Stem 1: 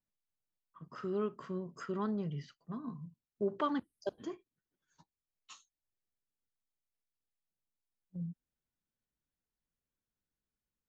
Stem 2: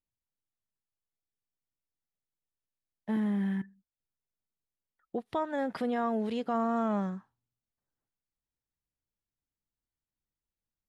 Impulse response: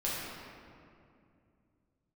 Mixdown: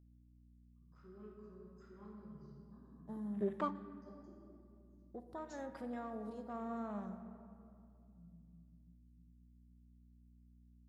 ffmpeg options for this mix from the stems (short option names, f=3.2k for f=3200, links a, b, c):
-filter_complex "[0:a]afwtdn=0.00398,equalizer=f=4.9k:t=o:w=0.23:g=4.5,volume=-4.5dB,asplit=2[a][b];[b]volume=-21.5dB[c];[1:a]afwtdn=0.00631,aeval=exprs='val(0)+0.00398*(sin(2*PI*60*n/s)+sin(2*PI*2*60*n/s)/2+sin(2*PI*3*60*n/s)/3+sin(2*PI*4*60*n/s)/4+sin(2*PI*5*60*n/s)/5)':c=same,volume=-16.5dB,asplit=3[d][e][f];[e]volume=-11dB[g];[f]apad=whole_len=480013[h];[a][h]sidechaingate=range=-33dB:threshold=-58dB:ratio=16:detection=peak[i];[2:a]atrim=start_sample=2205[j];[c][g]amix=inputs=2:normalize=0[k];[k][j]afir=irnorm=-1:irlink=0[l];[i][d][l]amix=inputs=3:normalize=0,aexciter=amount=7:drive=3.2:freq=4.1k"